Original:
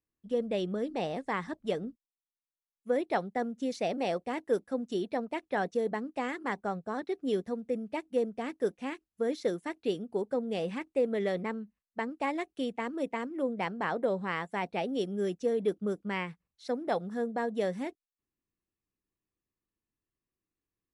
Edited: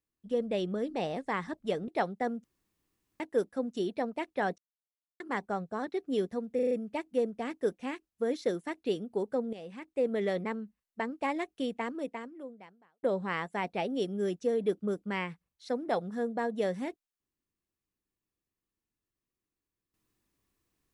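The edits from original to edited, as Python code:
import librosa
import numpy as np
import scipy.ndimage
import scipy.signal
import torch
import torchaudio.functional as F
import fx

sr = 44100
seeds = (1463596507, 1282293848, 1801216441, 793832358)

y = fx.edit(x, sr, fx.cut(start_s=1.88, length_s=1.15),
    fx.room_tone_fill(start_s=3.59, length_s=0.76),
    fx.silence(start_s=5.73, length_s=0.62),
    fx.stutter(start_s=7.7, slice_s=0.04, count=5),
    fx.fade_in_from(start_s=10.52, length_s=0.54, curve='qua', floor_db=-12.5),
    fx.fade_out_span(start_s=12.83, length_s=1.19, curve='qua'), tone=tone)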